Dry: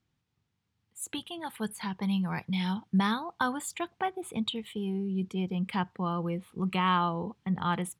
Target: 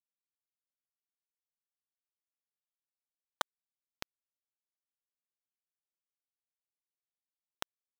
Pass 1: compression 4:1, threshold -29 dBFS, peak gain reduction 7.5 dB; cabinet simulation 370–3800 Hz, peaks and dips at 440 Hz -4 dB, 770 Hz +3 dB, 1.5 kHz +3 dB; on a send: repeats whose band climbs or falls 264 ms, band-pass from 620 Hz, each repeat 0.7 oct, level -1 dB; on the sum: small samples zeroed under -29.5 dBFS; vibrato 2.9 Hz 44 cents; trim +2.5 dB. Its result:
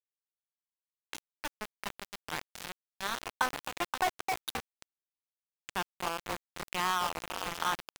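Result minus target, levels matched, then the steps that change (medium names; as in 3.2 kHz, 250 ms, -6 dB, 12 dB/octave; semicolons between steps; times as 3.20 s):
small samples zeroed: distortion -18 dB
change: small samples zeroed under -20 dBFS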